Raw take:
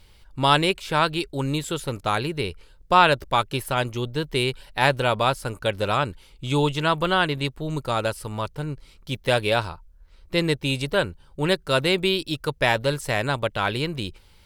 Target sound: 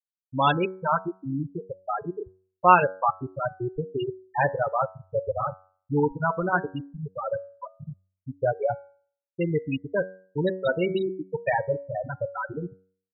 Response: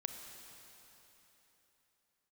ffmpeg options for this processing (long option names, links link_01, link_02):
-filter_complex "[0:a]asplit=2[link_01][link_02];[1:a]atrim=start_sample=2205,asetrate=83790,aresample=44100,adelay=11[link_03];[link_02][link_03]afir=irnorm=-1:irlink=0,volume=-2.5dB[link_04];[link_01][link_04]amix=inputs=2:normalize=0,afftfilt=real='re*gte(hypot(re,im),0.355)':imag='im*gte(hypot(re,im),0.355)':win_size=1024:overlap=0.75,bandreject=frequency=93.9:width_type=h:width=4,bandreject=frequency=187.8:width_type=h:width=4,bandreject=frequency=281.7:width_type=h:width=4,bandreject=frequency=375.6:width_type=h:width=4,bandreject=frequency=469.5:width_type=h:width=4,bandreject=frequency=563.4:width_type=h:width=4,bandreject=frequency=657.3:width_type=h:width=4,bandreject=frequency=751.2:width_type=h:width=4,bandreject=frequency=845.1:width_type=h:width=4,bandreject=frequency=939:width_type=h:width=4,bandreject=frequency=1032.9:width_type=h:width=4,bandreject=frequency=1126.8:width_type=h:width=4,bandreject=frequency=1220.7:width_type=h:width=4,bandreject=frequency=1314.6:width_type=h:width=4,bandreject=frequency=1408.5:width_type=h:width=4,bandreject=frequency=1502.4:width_type=h:width=4,bandreject=frequency=1596.3:width_type=h:width=4,bandreject=frequency=1690.2:width_type=h:width=4,bandreject=frequency=1784.1:width_type=h:width=4,bandreject=frequency=1878:width_type=h:width=4,bandreject=frequency=1971.9:width_type=h:width=4,bandreject=frequency=2065.8:width_type=h:width=4,bandreject=frequency=2159.7:width_type=h:width=4,bandreject=frequency=2253.6:width_type=h:width=4,bandreject=frequency=2347.5:width_type=h:width=4,atempo=1.1,volume=-1dB"